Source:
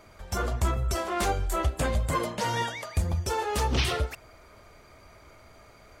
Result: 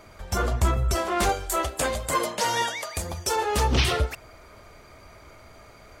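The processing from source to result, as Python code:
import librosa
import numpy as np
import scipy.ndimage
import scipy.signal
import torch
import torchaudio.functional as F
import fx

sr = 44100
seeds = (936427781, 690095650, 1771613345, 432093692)

y = fx.bass_treble(x, sr, bass_db=-12, treble_db=5, at=(1.29, 3.36))
y = y * 10.0 ** (4.0 / 20.0)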